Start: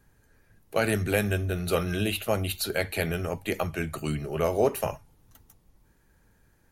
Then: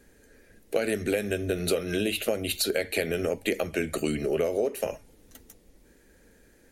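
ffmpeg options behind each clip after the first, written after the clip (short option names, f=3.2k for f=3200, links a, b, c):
-af "equalizer=f=125:t=o:w=1:g=-9,equalizer=f=250:t=o:w=1:g=7,equalizer=f=500:t=o:w=1:g=10,equalizer=f=1k:t=o:w=1:g=-8,equalizer=f=2k:t=o:w=1:g=6,equalizer=f=4k:t=o:w=1:g=3,equalizer=f=8k:t=o:w=1:g=6,acompressor=threshold=-26dB:ratio=10,volume=3dB"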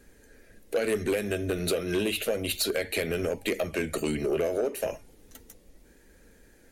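-af "flanger=delay=0.7:depth=2.7:regen=81:speed=0.32:shape=triangular,asoftclip=type=tanh:threshold=-24.5dB,volume=5.5dB"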